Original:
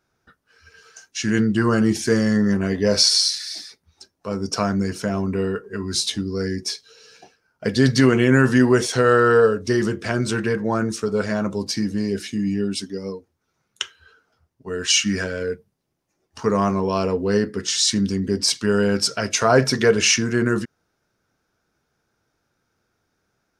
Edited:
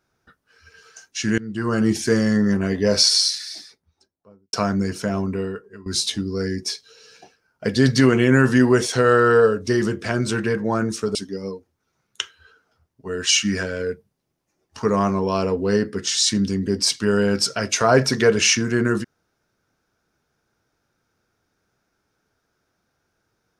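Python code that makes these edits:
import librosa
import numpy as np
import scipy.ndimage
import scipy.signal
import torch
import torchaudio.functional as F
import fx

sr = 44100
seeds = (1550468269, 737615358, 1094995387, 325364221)

y = fx.studio_fade_out(x, sr, start_s=3.26, length_s=1.27)
y = fx.edit(y, sr, fx.fade_in_from(start_s=1.38, length_s=0.51, floor_db=-22.0),
    fx.fade_out_to(start_s=5.19, length_s=0.67, floor_db=-18.0),
    fx.cut(start_s=11.15, length_s=1.61), tone=tone)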